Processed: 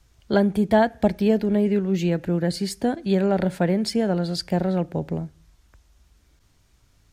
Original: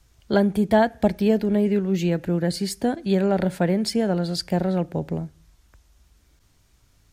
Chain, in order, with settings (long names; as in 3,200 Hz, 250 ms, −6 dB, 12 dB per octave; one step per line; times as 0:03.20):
high-shelf EQ 8,800 Hz −4.5 dB